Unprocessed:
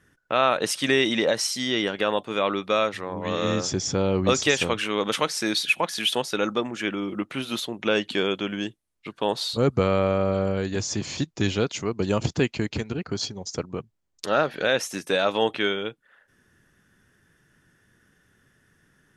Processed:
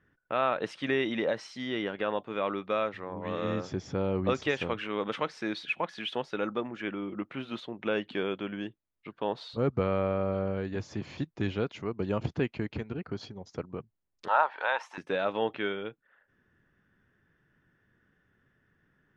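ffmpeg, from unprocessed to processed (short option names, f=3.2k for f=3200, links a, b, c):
-filter_complex "[0:a]asettb=1/sr,asplit=3[a][b][c];[a]atrim=end=14.284[d];[b]atrim=start=14.28:end=14.98,asetpts=PTS-STARTPTS,afade=t=in:d=0.004:c=qsin,afade=t=out:st=0.696:d=0.004:c=qsin,highpass=f=910:t=q:w=8[e];[c]atrim=start=14.976[f];[d][e]acrossfade=d=0.004:c1=hsin:c2=qsin[g];[g][f]acrossfade=d=0.004:c1=qsin:c2=hsin,lowpass=2.4k,volume=-6.5dB"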